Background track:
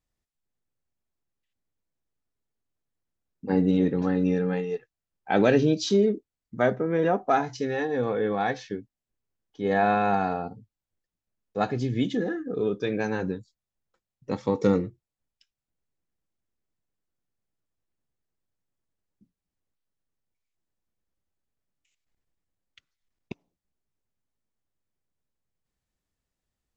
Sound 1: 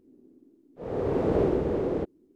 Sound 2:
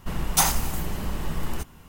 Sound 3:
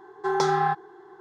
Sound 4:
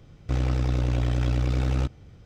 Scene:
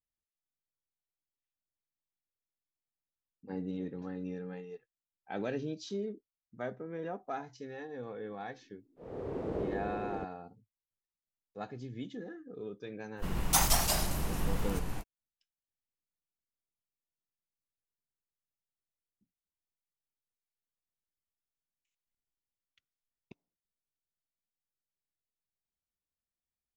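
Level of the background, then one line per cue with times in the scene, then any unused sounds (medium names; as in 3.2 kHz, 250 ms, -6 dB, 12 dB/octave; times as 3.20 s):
background track -16 dB
8.20 s: add 1 -11.5 dB
13.16 s: add 2 -6.5 dB, fades 0.05 s + ever faster or slower copies 125 ms, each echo -2 st, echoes 2
not used: 3, 4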